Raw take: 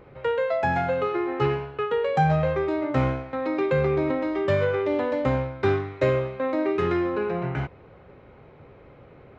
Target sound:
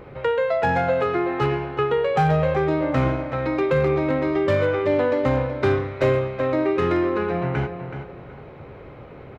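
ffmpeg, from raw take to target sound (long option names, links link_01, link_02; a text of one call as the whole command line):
ffmpeg -i in.wav -filter_complex "[0:a]asplit=2[link_01][link_02];[link_02]acompressor=threshold=-34dB:ratio=5,volume=3dB[link_03];[link_01][link_03]amix=inputs=2:normalize=0,asoftclip=type=hard:threshold=-13dB,asplit=2[link_04][link_05];[link_05]adelay=375,lowpass=frequency=4200:poles=1,volume=-9dB,asplit=2[link_06][link_07];[link_07]adelay=375,lowpass=frequency=4200:poles=1,volume=0.28,asplit=2[link_08][link_09];[link_09]adelay=375,lowpass=frequency=4200:poles=1,volume=0.28[link_10];[link_04][link_06][link_08][link_10]amix=inputs=4:normalize=0" out.wav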